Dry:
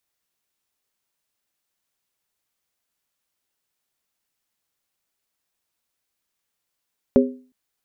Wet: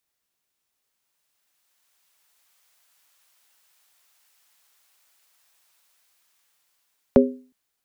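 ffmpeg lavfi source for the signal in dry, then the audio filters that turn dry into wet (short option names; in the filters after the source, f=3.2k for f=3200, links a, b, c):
-f lavfi -i "aevalsrc='0.316*pow(10,-3*t/0.4)*sin(2*PI*254*t)+0.251*pow(10,-3*t/0.317)*sin(2*PI*404.9*t)+0.2*pow(10,-3*t/0.274)*sin(2*PI*542.5*t)':d=0.36:s=44100"
-filter_complex "[0:a]acrossover=split=170|620[a][b][c];[c]dynaudnorm=f=340:g=11:m=15.5dB[d];[a][b][d]amix=inputs=3:normalize=0"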